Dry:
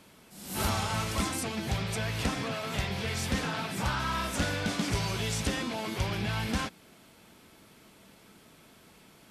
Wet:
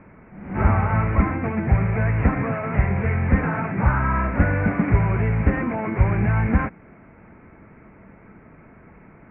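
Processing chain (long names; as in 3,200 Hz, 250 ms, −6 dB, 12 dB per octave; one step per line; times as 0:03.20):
Butterworth low-pass 2,300 Hz 72 dB per octave
low-shelf EQ 140 Hz +9.5 dB
level +8 dB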